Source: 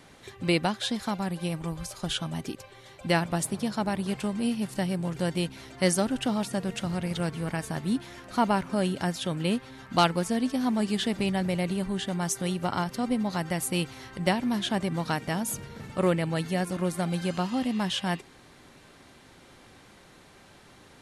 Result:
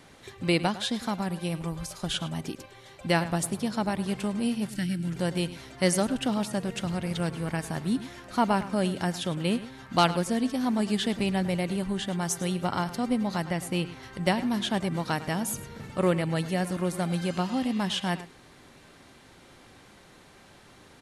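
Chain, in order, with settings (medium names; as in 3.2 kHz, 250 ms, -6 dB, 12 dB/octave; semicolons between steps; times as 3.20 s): 4.70–5.13 s: time-frequency box 360–1300 Hz -15 dB; 13.44–14.02 s: treble shelf 8 kHz -> 4.5 kHz -11.5 dB; echo from a far wall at 18 m, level -15 dB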